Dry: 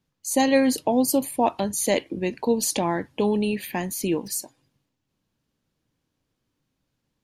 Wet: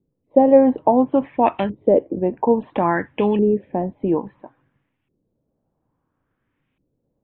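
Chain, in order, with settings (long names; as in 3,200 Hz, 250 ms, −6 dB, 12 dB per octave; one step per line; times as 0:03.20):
auto-filter low-pass saw up 0.59 Hz 380–2,600 Hz
downsampling to 8,000 Hz
level +3.5 dB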